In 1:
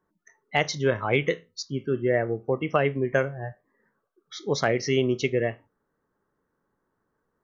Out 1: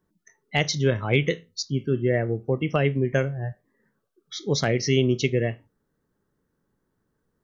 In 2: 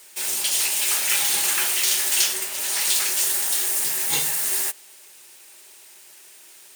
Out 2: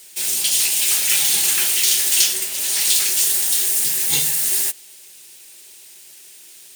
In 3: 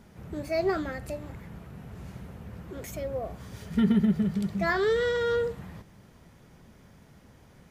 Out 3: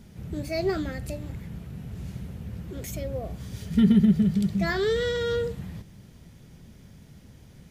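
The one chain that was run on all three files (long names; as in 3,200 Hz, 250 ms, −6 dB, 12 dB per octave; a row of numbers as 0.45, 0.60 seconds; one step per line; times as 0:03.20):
drawn EQ curve 150 Hz 0 dB, 1,100 Hz −12 dB, 3,400 Hz −2 dB
level +6.5 dB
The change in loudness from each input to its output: +1.5, +4.5, +1.5 LU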